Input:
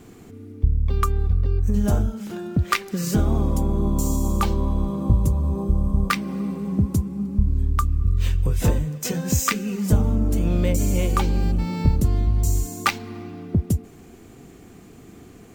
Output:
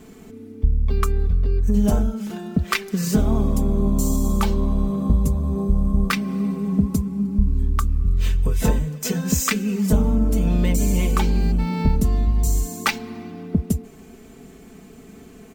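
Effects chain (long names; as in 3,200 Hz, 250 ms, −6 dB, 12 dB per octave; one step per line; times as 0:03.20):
comb filter 4.6 ms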